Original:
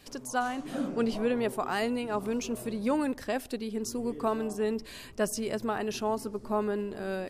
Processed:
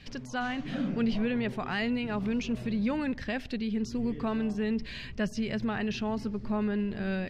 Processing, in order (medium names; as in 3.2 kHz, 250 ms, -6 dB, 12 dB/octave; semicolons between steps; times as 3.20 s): high-order bell 610 Hz -11.5 dB 2.6 oct; in parallel at +3 dB: peak limiter -33 dBFS, peak gain reduction 11.5 dB; on the sum: distance through air 230 m; trim +2 dB